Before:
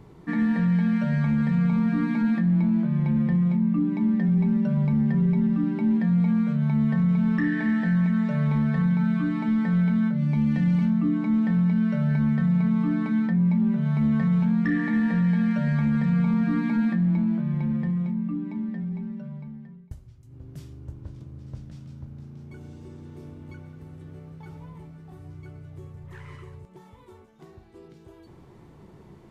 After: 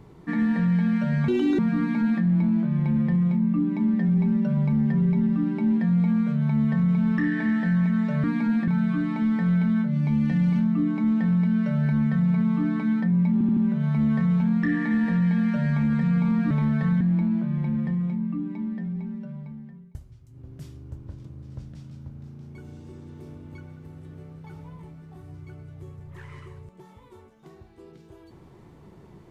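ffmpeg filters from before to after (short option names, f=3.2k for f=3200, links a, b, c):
-filter_complex "[0:a]asplit=10[a][b][c][d][e][f][g][h][i][j];[a]atrim=end=1.284[k];[b]atrim=start=1.28:end=1.79,asetpts=PTS-STARTPTS,asetrate=73206,aresample=44100[l];[c]atrim=start=1.786:end=8.442[m];[d]atrim=start=16.528:end=16.972[n];[e]atrim=start=8.938:end=13.672[o];[f]atrim=start=13.588:end=13.672[p];[g]atrim=start=13.588:end=13.672[q];[h]atrim=start=13.588:end=16.532[r];[i]atrim=start=8.438:end=8.942[s];[j]atrim=start=16.968[t];[k][l]acrossfade=d=0.004:c1=hsin:c2=hsin[u];[u][m]acrossfade=d=0.004:c1=hsin:c2=hsin[v];[v][n]acrossfade=d=0.004:c1=hsin:c2=hsin[w];[w][o]acrossfade=d=0.004:c1=hsin:c2=hsin[x];[x][p]acrossfade=d=0.004:c1=hsin:c2=hsin[y];[y][q]acrossfade=d=0.004:c1=hsin:c2=hsin[z];[z][r]acrossfade=d=0.004:c1=hsin:c2=hsin[aa];[aa][s]acrossfade=d=0.004:c1=hsin:c2=hsin[ab];[ab][t]acrossfade=d=0.004:c1=hsin:c2=hsin"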